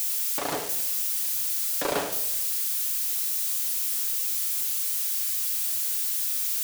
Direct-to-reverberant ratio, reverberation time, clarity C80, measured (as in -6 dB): 4.0 dB, 0.85 s, 12.0 dB